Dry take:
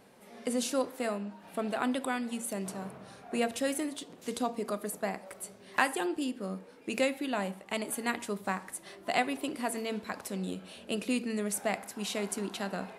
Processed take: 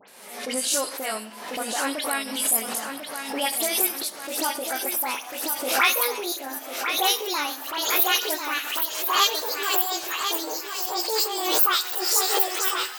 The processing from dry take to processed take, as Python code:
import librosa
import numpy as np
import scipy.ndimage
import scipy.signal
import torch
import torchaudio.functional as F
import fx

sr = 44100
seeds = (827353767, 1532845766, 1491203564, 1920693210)

p1 = fx.pitch_glide(x, sr, semitones=11.5, runs='starting unshifted')
p2 = fx.highpass(p1, sr, hz=1100.0, slope=6)
p3 = fx.high_shelf(p2, sr, hz=4800.0, db=9.0)
p4 = fx.transient(p3, sr, attack_db=-4, sustain_db=0)
p5 = fx.level_steps(p4, sr, step_db=11)
p6 = p4 + (p5 * librosa.db_to_amplitude(-0.5))
p7 = fx.dispersion(p6, sr, late='highs', ms=83.0, hz=2600.0)
p8 = p7 + fx.echo_feedback(p7, sr, ms=1045, feedback_pct=30, wet_db=-7.5, dry=0)
p9 = fx.pre_swell(p8, sr, db_per_s=57.0)
y = p9 * librosa.db_to_amplitude(7.0)